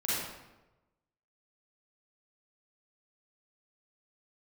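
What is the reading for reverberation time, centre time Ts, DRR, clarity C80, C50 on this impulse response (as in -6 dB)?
1.0 s, 94 ms, -9.5 dB, 0.5 dB, -4.0 dB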